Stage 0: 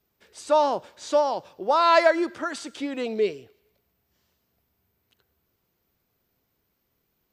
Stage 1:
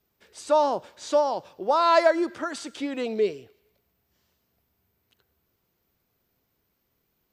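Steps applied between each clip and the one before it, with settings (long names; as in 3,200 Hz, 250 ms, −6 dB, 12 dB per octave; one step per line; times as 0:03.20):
dynamic equaliser 2,400 Hz, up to −5 dB, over −35 dBFS, Q 0.88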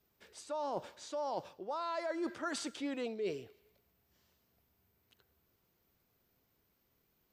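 brickwall limiter −15 dBFS, peak gain reduction 7.5 dB
reversed playback
downward compressor 10 to 1, threshold −32 dBFS, peak gain reduction 13.5 dB
reversed playback
level −2.5 dB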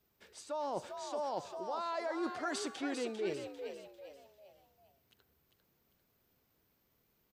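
echo with shifted repeats 397 ms, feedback 38%, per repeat +67 Hz, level −7 dB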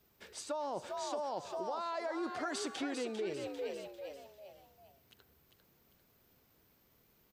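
downward compressor 6 to 1, threshold −41 dBFS, peak gain reduction 9.5 dB
level +6 dB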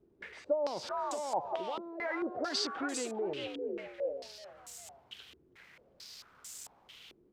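spike at every zero crossing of −38.5 dBFS
low-pass on a step sequencer 4.5 Hz 350–7,500 Hz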